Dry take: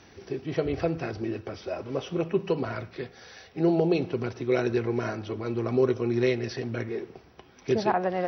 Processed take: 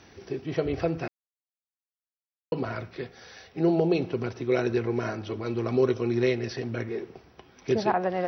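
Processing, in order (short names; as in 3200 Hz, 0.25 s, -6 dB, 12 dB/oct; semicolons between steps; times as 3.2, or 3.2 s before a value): 1.08–2.52 mute; 5.2–6.14 dynamic EQ 4000 Hz, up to +4 dB, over -48 dBFS, Q 0.8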